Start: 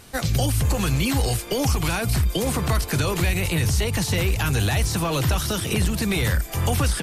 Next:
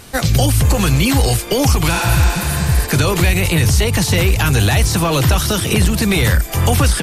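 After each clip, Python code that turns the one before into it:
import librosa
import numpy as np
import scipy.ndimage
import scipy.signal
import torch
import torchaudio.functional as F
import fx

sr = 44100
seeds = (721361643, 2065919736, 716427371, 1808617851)

y = fx.spec_repair(x, sr, seeds[0], start_s=1.97, length_s=0.87, low_hz=210.0, high_hz=9100.0, source='both')
y = y * librosa.db_to_amplitude(8.0)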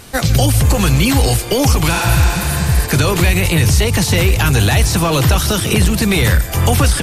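y = x + 10.0 ** (-17.0 / 20.0) * np.pad(x, (int(153 * sr / 1000.0), 0))[:len(x)]
y = y * librosa.db_to_amplitude(1.0)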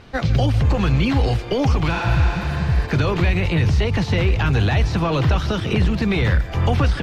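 y = fx.air_absorb(x, sr, metres=230.0)
y = y * librosa.db_to_amplitude(-4.5)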